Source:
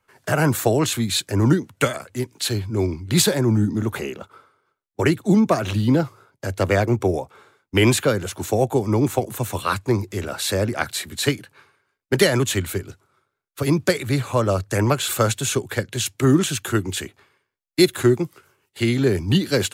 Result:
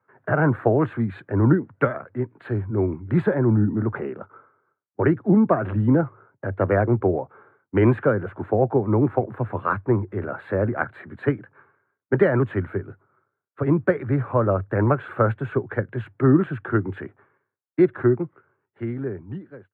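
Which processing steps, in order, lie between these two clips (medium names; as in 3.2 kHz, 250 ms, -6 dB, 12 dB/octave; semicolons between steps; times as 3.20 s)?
fade out at the end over 2.10 s; elliptic band-pass 100–1600 Hz, stop band 50 dB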